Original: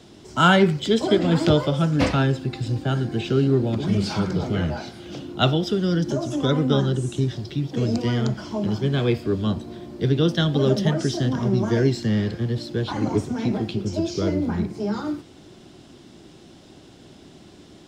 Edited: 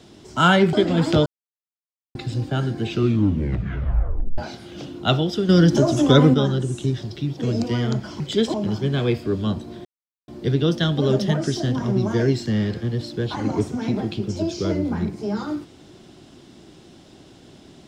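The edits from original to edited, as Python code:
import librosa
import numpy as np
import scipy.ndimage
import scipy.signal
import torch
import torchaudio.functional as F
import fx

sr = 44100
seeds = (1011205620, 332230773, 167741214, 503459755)

y = fx.edit(x, sr, fx.move(start_s=0.73, length_s=0.34, to_s=8.54),
    fx.silence(start_s=1.6, length_s=0.89),
    fx.tape_stop(start_s=3.23, length_s=1.49),
    fx.clip_gain(start_s=5.83, length_s=0.85, db=7.5),
    fx.insert_silence(at_s=9.85, length_s=0.43), tone=tone)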